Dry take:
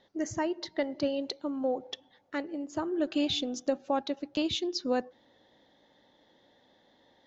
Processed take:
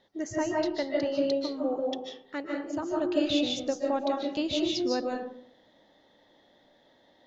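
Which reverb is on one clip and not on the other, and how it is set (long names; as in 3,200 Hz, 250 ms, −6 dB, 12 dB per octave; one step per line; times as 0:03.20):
comb and all-pass reverb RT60 0.63 s, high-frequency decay 0.45×, pre-delay 110 ms, DRR −1.5 dB
level −1.5 dB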